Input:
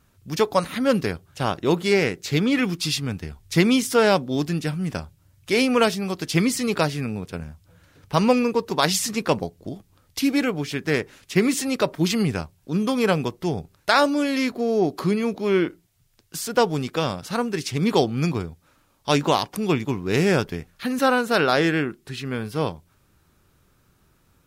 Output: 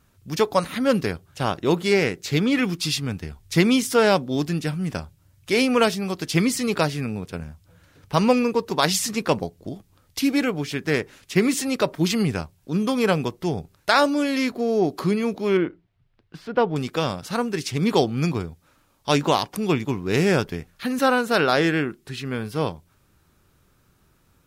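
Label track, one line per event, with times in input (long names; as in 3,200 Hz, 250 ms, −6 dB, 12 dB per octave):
15.570000	16.760000	high-frequency loss of the air 370 metres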